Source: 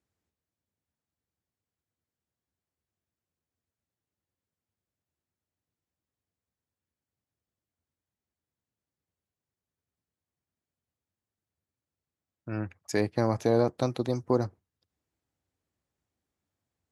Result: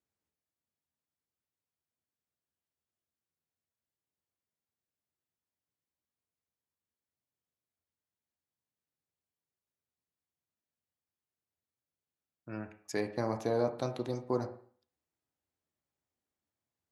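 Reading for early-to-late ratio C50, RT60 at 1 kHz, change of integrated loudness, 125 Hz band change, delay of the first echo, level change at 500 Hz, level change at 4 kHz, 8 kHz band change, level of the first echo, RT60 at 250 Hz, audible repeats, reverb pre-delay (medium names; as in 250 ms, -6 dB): 11.5 dB, 0.50 s, -6.5 dB, -9.0 dB, no echo, -6.0 dB, -6.0 dB, -6.0 dB, no echo, 0.50 s, no echo, 12 ms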